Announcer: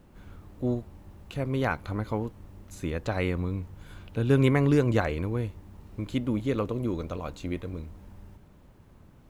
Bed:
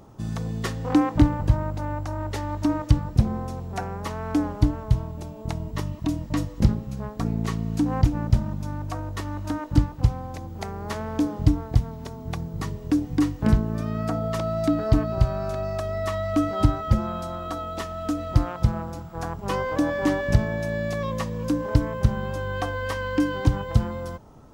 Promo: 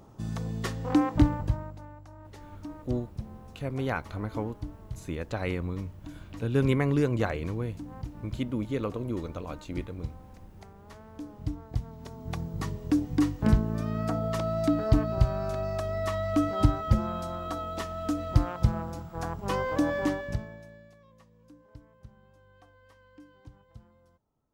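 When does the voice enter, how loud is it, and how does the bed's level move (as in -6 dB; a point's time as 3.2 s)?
2.25 s, -3.0 dB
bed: 1.33 s -4 dB
1.95 s -18.5 dB
11.14 s -18.5 dB
12.4 s -3 dB
19.98 s -3 dB
21 s -30 dB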